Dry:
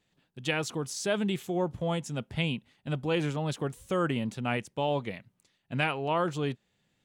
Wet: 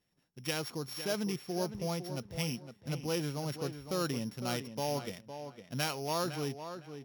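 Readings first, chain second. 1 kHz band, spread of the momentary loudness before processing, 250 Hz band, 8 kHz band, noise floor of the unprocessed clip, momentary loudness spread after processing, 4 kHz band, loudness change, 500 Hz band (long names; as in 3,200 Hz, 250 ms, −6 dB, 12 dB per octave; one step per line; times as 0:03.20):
−6.0 dB, 7 LU, −5.0 dB, −0.5 dB, −76 dBFS, 8 LU, −2.0 dB, −5.0 dB, −5.0 dB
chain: samples sorted by size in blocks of 8 samples
tape delay 507 ms, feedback 25%, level −8.5 dB, low-pass 2,900 Hz
level −5.5 dB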